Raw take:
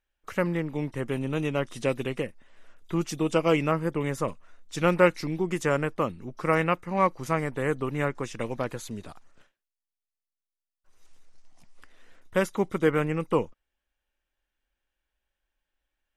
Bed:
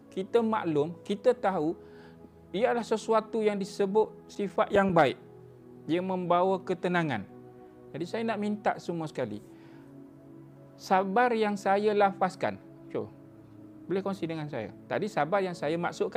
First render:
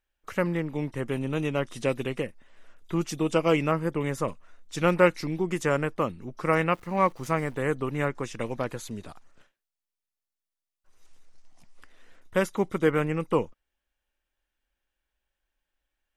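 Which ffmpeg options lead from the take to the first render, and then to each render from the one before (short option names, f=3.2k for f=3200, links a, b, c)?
-filter_complex "[0:a]asettb=1/sr,asplit=3[a][b][c];[a]atrim=end=6.724[d];[b]atrim=start=6.72:end=7.58,asetpts=PTS-STARTPTS,afade=t=in:d=0.004:c=qsin,afade=t=out:st=0.856:d=0.004:c=qsin,aeval=exprs='val(0)*gte(abs(val(0)),0.00335)':c=same[e];[c]atrim=start=7.576[f];[d][e]acrossfade=d=0.004:c1=hsin:c2=qsin[g];[g][f]acrossfade=d=0.004:c1=qsin:c2=hsin"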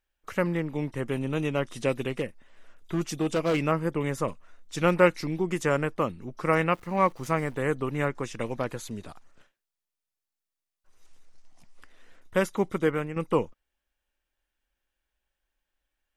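-filter_complex "[0:a]asettb=1/sr,asplit=3[a][b][c];[a]atrim=end=2.094[d];[b]atrim=start=2.09:end=3.65,asetpts=PTS-STARTPTS,afade=t=in:d=0.004:c=qsin,afade=t=out:st=1.556:d=0.004:c=qsin,volume=21dB,asoftclip=hard,volume=-21dB[e];[c]atrim=start=3.646[f];[d][e]acrossfade=d=0.004:c1=hsin:c2=qsin[g];[g][f]acrossfade=d=0.004:c1=qsin:c2=hsin,asplit=2[h][i];[h]atrim=end=13.16,asetpts=PTS-STARTPTS,afade=t=out:st=12.73:d=0.43:silence=0.354813[j];[i]atrim=start=13.16,asetpts=PTS-STARTPTS,afade=t=in:d=0.004:c=hsin:silence=0.354813[k];[j][k]concat=n=2:v=0:a=1"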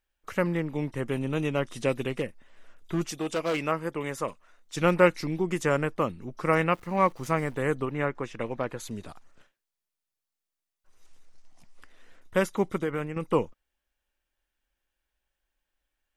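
-filter_complex "[0:a]asettb=1/sr,asplit=3[a][b][c];[a]atrim=end=3.114[d];[b]atrim=start=3.11:end=4.77,asetpts=PTS-STARTPTS,afade=t=in:d=0.004:c=qsin,afade=t=out:st=1.656:d=0.004:c=qsin,lowshelf=f=270:g=-10.5[e];[c]atrim=start=4.766[f];[d][e]acrossfade=d=0.004:c1=hsin:c2=qsin[g];[g][f]acrossfade=d=0.004:c1=qsin:c2=hsin,asettb=1/sr,asplit=3[h][i][j];[h]atrim=end=7.854[k];[i]atrim=start=7.85:end=8.8,asetpts=PTS-STARTPTS,afade=t=in:d=0.004:c=qsin,afade=t=out:st=0.946:d=0.004:c=qsin,bass=f=250:g=-3,treble=f=4k:g=-11[l];[j]atrim=start=8.796[m];[k][l]acrossfade=d=0.004:c1=hsin:c2=qsin[n];[n][m]acrossfade=d=0.004:c1=qsin:c2=hsin,asettb=1/sr,asplit=3[o][p][q];[o]atrim=end=12.814[r];[p]atrim=start=12.81:end=13.23,asetpts=PTS-STARTPTS,afade=t=in:d=0.004:c=qsin,afade=t=out:st=0.416:d=0.004:c=qsin,acompressor=threshold=-25dB:ratio=3:attack=3.2:release=140:knee=1:detection=peak[s];[q]atrim=start=13.226[t];[r][s]acrossfade=d=0.004:c1=hsin:c2=qsin[u];[u][t]acrossfade=d=0.004:c1=qsin:c2=hsin"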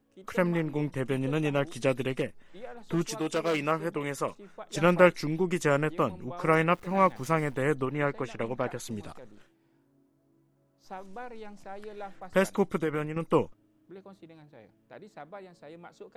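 -filter_complex "[1:a]volume=-17.5dB[a];[0:a][a]amix=inputs=2:normalize=0"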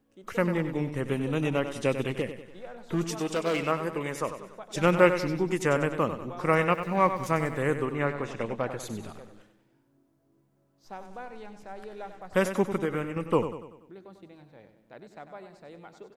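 -af "aecho=1:1:96|192|288|384|480:0.316|0.152|0.0729|0.035|0.0168"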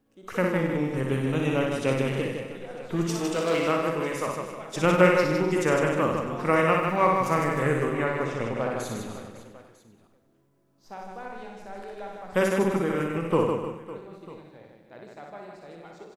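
-filter_complex "[0:a]asplit=2[a][b];[b]adelay=44,volume=-11dB[c];[a][c]amix=inputs=2:normalize=0,aecho=1:1:60|156|309.6|555.4|948.6:0.631|0.398|0.251|0.158|0.1"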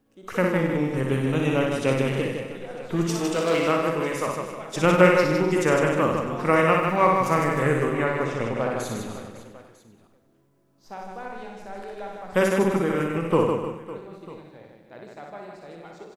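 -af "volume=2.5dB"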